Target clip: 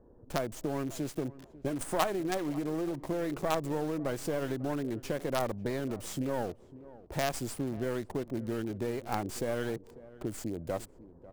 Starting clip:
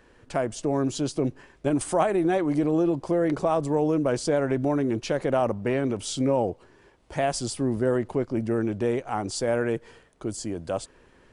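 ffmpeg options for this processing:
ffmpeg -i in.wav -filter_complex "[0:a]equalizer=frequency=4000:width=0.91:gain=-9,acrossover=split=860[link_01][link_02];[link_01]acompressor=threshold=-32dB:ratio=6[link_03];[link_02]acrusher=bits=5:dc=4:mix=0:aa=0.000001[link_04];[link_03][link_04]amix=inputs=2:normalize=0,asplit=2[link_05][link_06];[link_06]adelay=546,lowpass=frequency=930:poles=1,volume=-17.5dB,asplit=2[link_07][link_08];[link_08]adelay=546,lowpass=frequency=930:poles=1,volume=0.27[link_09];[link_05][link_07][link_09]amix=inputs=3:normalize=0" out.wav

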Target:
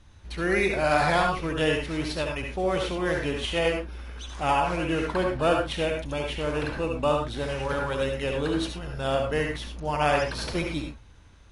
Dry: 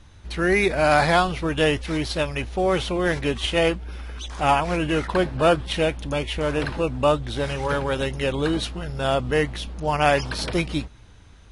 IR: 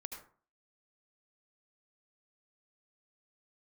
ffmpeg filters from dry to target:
-filter_complex "[1:a]atrim=start_sample=2205,afade=type=out:start_time=0.2:duration=0.01,atrim=end_sample=9261,asetrate=48510,aresample=44100[link_01];[0:a][link_01]afir=irnorm=-1:irlink=0"

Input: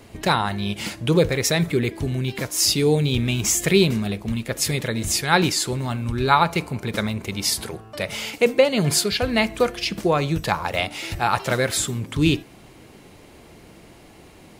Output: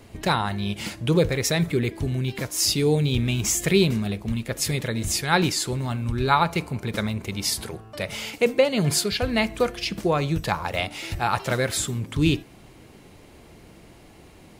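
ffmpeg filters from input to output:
ffmpeg -i in.wav -af "lowshelf=frequency=130:gain=4.5,volume=-3dB" out.wav

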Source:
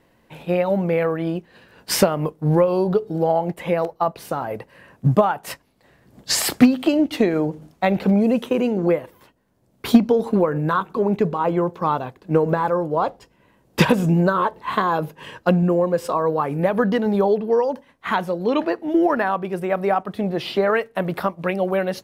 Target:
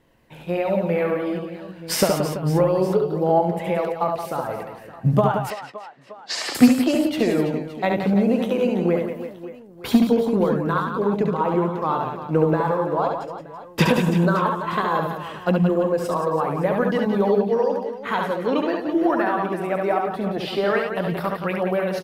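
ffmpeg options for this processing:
ffmpeg -i in.wav -filter_complex "[0:a]asplit=2[link_01][link_02];[link_02]aecho=0:1:70|175|332.5|568.8|923.1:0.631|0.398|0.251|0.158|0.1[link_03];[link_01][link_03]amix=inputs=2:normalize=0,flanger=delay=0.3:depth=7:regen=81:speed=0.19:shape=sinusoidal,asettb=1/sr,asplit=3[link_04][link_05][link_06];[link_04]atrim=end=5.504[link_07];[link_05]atrim=start=5.5:end=6.55,asetpts=PTS-STARTPTS,afade=type=in:duration=0.004:curve=qsin,afade=type=out:start_time=1.046:duration=0.004:curve=qsin,highpass=360,lowpass=4500[link_08];[link_06]atrim=start=6.546[link_09];[link_07][link_08]acrossfade=duration=0.004:curve1=hsin:curve2=qsin[link_10];[link_10][link_09]acrossfade=duration=0.004:curve1=qsin:curve2=hsin,volume=1.5dB" out.wav

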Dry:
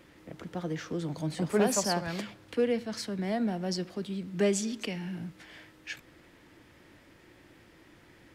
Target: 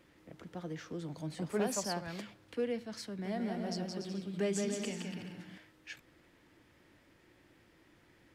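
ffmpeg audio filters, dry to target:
ffmpeg -i in.wav -filter_complex "[0:a]asettb=1/sr,asplit=3[link_01][link_02][link_03];[link_01]atrim=end=3.074[link_04];[link_02]atrim=start=3.07:end=5.58,asetpts=PTS-STARTPTS,afade=type=in:duration=0.004:curve=qsin,afade=type=out:start_time=2.506:duration=0.004:curve=qsin,aecho=1:1:170|289|372.3|430.6|471.4:0.631|0.398|0.251|0.158|0.1,atrim=end_sample=110691[link_05];[link_03]atrim=start=5.576[link_06];[link_04][link_05]acrossfade=duration=0.004:curve1=hsin:curve2=qsin[link_07];[link_07][link_06]acrossfade=duration=0.004:curve1=qsin:curve2=hsin,volume=-7.5dB" out.wav

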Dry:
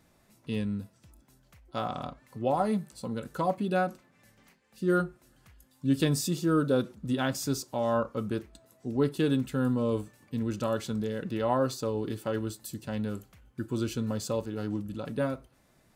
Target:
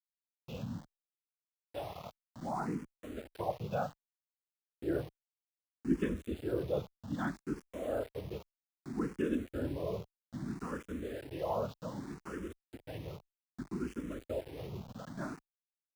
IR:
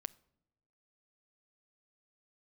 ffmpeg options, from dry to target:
-filter_complex "[0:a]lowpass=frequency=3000:width=0.5412,lowpass=frequency=3000:width=1.3066,asplit=2[link_01][link_02];[link_02]adelay=62,lowpass=frequency=2000:poles=1,volume=-17dB,asplit=2[link_03][link_04];[link_04]adelay=62,lowpass=frequency=2000:poles=1,volume=0.22[link_05];[link_03][link_05]amix=inputs=2:normalize=0[link_06];[link_01][link_06]amix=inputs=2:normalize=0,afftfilt=real='hypot(re,im)*cos(2*PI*random(0))':imag='hypot(re,im)*sin(2*PI*random(1))':win_size=512:overlap=0.75,highpass=frequency=40:width=0.5412,highpass=frequency=40:width=1.3066,aeval=exprs='val(0)*gte(abs(val(0)),0.00596)':channel_layout=same,asplit=2[link_07][link_08];[link_08]afreqshift=0.63[link_09];[link_07][link_09]amix=inputs=2:normalize=1"

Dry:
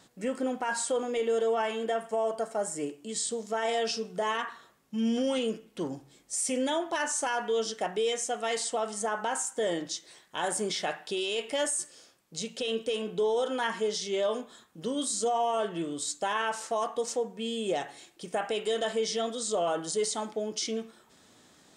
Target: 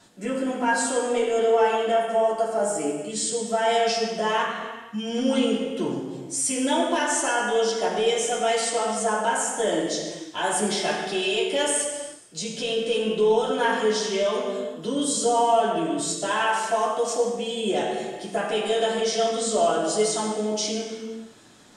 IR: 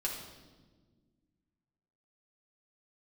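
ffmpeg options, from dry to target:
-filter_complex "[1:a]atrim=start_sample=2205,afade=type=out:start_time=0.36:duration=0.01,atrim=end_sample=16317,asetrate=26019,aresample=44100[link_01];[0:a][link_01]afir=irnorm=-1:irlink=0"

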